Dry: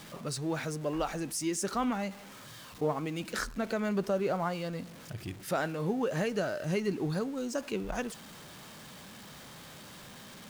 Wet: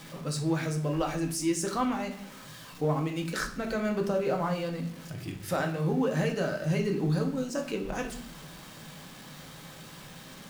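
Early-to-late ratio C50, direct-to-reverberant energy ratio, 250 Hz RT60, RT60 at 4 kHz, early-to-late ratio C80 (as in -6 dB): 10.0 dB, 2.5 dB, 1.1 s, 0.45 s, 14.0 dB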